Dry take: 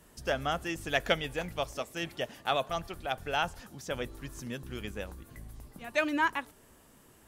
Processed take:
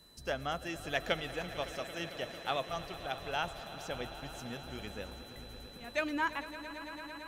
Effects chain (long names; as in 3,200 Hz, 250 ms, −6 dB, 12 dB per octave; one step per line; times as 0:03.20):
steady tone 4,000 Hz −55 dBFS
echo that builds up and dies away 112 ms, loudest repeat 5, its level −17 dB
level −5 dB